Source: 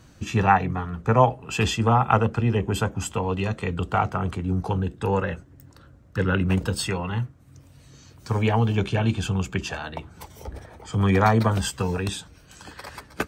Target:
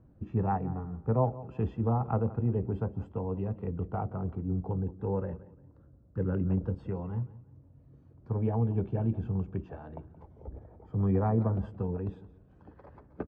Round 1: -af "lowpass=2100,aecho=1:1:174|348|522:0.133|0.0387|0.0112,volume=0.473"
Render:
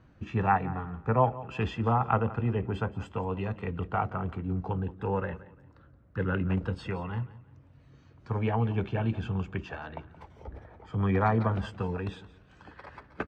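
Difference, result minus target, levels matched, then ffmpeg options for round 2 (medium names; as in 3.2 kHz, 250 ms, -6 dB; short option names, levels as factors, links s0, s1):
2 kHz band +15.0 dB
-af "lowpass=590,aecho=1:1:174|348|522:0.133|0.0387|0.0112,volume=0.473"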